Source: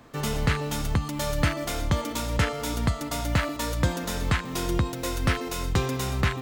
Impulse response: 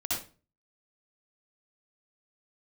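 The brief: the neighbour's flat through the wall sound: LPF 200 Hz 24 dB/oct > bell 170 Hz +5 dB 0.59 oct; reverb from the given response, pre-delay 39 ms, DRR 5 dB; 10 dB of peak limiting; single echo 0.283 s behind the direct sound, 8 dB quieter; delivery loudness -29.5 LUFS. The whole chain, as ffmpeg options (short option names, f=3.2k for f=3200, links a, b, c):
-filter_complex "[0:a]alimiter=limit=-21dB:level=0:latency=1,aecho=1:1:283:0.398,asplit=2[a][b];[1:a]atrim=start_sample=2205,adelay=39[c];[b][c]afir=irnorm=-1:irlink=0,volume=-11dB[d];[a][d]amix=inputs=2:normalize=0,lowpass=f=200:w=0.5412,lowpass=f=200:w=1.3066,equalizer=f=170:t=o:w=0.59:g=5,volume=1.5dB"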